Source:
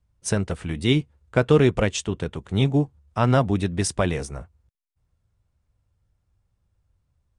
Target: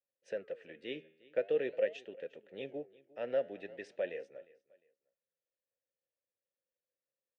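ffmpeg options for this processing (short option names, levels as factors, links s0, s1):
-filter_complex "[0:a]asplit=3[s0][s1][s2];[s0]bandpass=f=530:t=q:w=8,volume=1[s3];[s1]bandpass=f=1840:t=q:w=8,volume=0.501[s4];[s2]bandpass=f=2480:t=q:w=8,volume=0.355[s5];[s3][s4][s5]amix=inputs=3:normalize=0,flanger=delay=3.5:depth=9.1:regen=89:speed=0.46:shape=sinusoidal,highpass=200,lowpass=5200,aecho=1:1:354|708:0.0794|0.0238"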